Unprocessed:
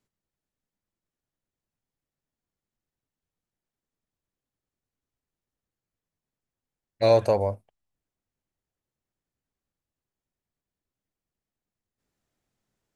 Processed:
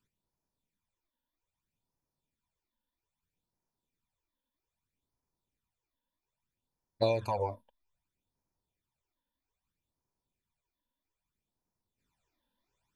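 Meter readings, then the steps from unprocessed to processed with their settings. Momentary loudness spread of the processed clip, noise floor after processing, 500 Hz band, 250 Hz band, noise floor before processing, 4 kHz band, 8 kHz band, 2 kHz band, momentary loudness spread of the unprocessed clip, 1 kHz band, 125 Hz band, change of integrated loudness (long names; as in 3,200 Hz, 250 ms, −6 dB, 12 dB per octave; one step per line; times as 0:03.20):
10 LU, below −85 dBFS, −10.5 dB, −8.0 dB, below −85 dBFS, −6.5 dB, can't be measured, −6.0 dB, 13 LU, −5.5 dB, −7.5 dB, −9.5 dB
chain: downward compressor 10 to 1, threshold −24 dBFS, peak gain reduction 10.5 dB
hollow resonant body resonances 960/2,400/3,500 Hz, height 12 dB, ringing for 30 ms
all-pass phaser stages 12, 0.62 Hz, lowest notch 120–3,200 Hz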